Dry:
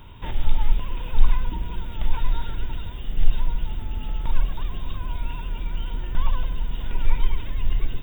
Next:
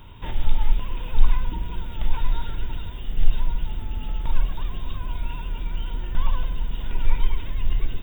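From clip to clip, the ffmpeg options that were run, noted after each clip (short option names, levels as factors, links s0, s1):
-af "bandreject=f=68.84:t=h:w=4,bandreject=f=137.68:t=h:w=4,bandreject=f=206.52:t=h:w=4,bandreject=f=275.36:t=h:w=4,bandreject=f=344.2:t=h:w=4,bandreject=f=413.04:t=h:w=4,bandreject=f=481.88:t=h:w=4,bandreject=f=550.72:t=h:w=4,bandreject=f=619.56:t=h:w=4,bandreject=f=688.4:t=h:w=4,bandreject=f=757.24:t=h:w=4,bandreject=f=826.08:t=h:w=4,bandreject=f=894.92:t=h:w=4,bandreject=f=963.76:t=h:w=4,bandreject=f=1032.6:t=h:w=4,bandreject=f=1101.44:t=h:w=4,bandreject=f=1170.28:t=h:w=4,bandreject=f=1239.12:t=h:w=4,bandreject=f=1307.96:t=h:w=4,bandreject=f=1376.8:t=h:w=4,bandreject=f=1445.64:t=h:w=4,bandreject=f=1514.48:t=h:w=4,bandreject=f=1583.32:t=h:w=4,bandreject=f=1652.16:t=h:w=4,bandreject=f=1721:t=h:w=4,bandreject=f=1789.84:t=h:w=4,bandreject=f=1858.68:t=h:w=4,bandreject=f=1927.52:t=h:w=4,bandreject=f=1996.36:t=h:w=4,bandreject=f=2065.2:t=h:w=4,bandreject=f=2134.04:t=h:w=4,bandreject=f=2202.88:t=h:w=4,bandreject=f=2271.72:t=h:w=4,bandreject=f=2340.56:t=h:w=4,bandreject=f=2409.4:t=h:w=4"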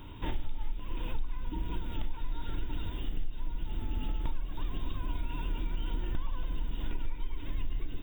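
-af "equalizer=f=300:w=3.2:g=10.5,acompressor=threshold=0.0631:ratio=8,volume=0.75"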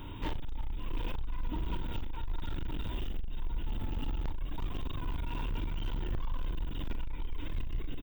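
-filter_complex "[0:a]asoftclip=type=hard:threshold=0.0251,asplit=2[s0][s1];[s1]adelay=41,volume=0.251[s2];[s0][s2]amix=inputs=2:normalize=0,volume=1.41"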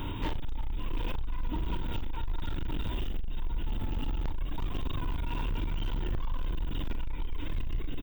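-af "alimiter=level_in=2.99:limit=0.0631:level=0:latency=1:release=205,volume=0.335,volume=2.66"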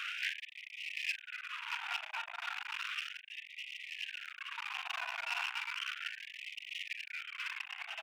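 -af "highpass=260,equalizer=f=270:t=q:w=4:g=10,equalizer=f=410:t=q:w=4:g=-4,equalizer=f=580:t=q:w=4:g=-4,equalizer=f=950:t=q:w=4:g=-10,equalizer=f=1500:t=q:w=4:g=4,equalizer=f=2500:t=q:w=4:g=9,lowpass=f=2800:w=0.5412,lowpass=f=2800:w=1.3066,aeval=exprs='clip(val(0),-1,0.00596)':c=same,afftfilt=real='re*gte(b*sr/1024,620*pow(1900/620,0.5+0.5*sin(2*PI*0.34*pts/sr)))':imag='im*gte(b*sr/1024,620*pow(1900/620,0.5+0.5*sin(2*PI*0.34*pts/sr)))':win_size=1024:overlap=0.75,volume=2.66"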